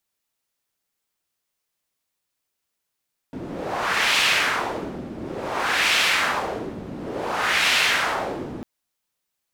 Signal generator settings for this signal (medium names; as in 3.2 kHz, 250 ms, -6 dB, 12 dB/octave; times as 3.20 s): wind-like swept noise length 5.30 s, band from 250 Hz, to 2.7 kHz, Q 1.5, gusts 3, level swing 14.5 dB